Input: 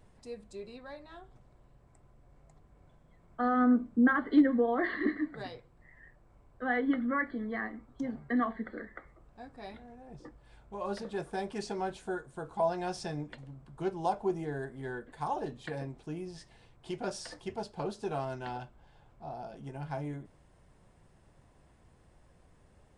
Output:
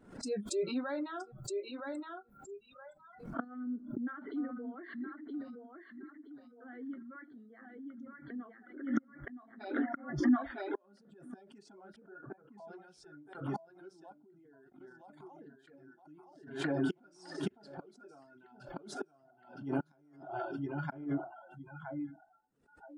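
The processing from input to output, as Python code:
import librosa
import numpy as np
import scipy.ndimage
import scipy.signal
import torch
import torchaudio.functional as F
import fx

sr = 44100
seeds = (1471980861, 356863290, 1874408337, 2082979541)

y = fx.peak_eq(x, sr, hz=620.0, db=4.0, octaves=2.0)
y = fx.echo_feedback(y, sr, ms=968, feedback_pct=32, wet_db=-4)
y = fx.transient(y, sr, attack_db=-2, sustain_db=6)
y = fx.lowpass(y, sr, hz=2100.0, slope=24, at=(11.96, 12.58))
y = fx.noise_reduce_blind(y, sr, reduce_db=28)
y = fx.gate_flip(y, sr, shuts_db=-30.0, range_db=-30)
y = fx.low_shelf(y, sr, hz=110.0, db=-8.5)
y = fx.small_body(y, sr, hz=(250.0, 1400.0), ring_ms=25, db=16)
y = fx.level_steps(y, sr, step_db=20, at=(14.12, 14.81))
y = fx.dereverb_blind(y, sr, rt60_s=1.5)
y = fx.pre_swell(y, sr, db_per_s=100.0)
y = y * librosa.db_to_amplitude(2.0)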